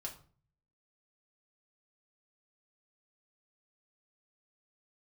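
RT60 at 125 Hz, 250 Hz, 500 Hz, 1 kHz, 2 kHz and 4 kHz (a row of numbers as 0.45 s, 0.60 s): 0.80 s, 0.60 s, 0.45 s, 0.40 s, 0.35 s, 0.30 s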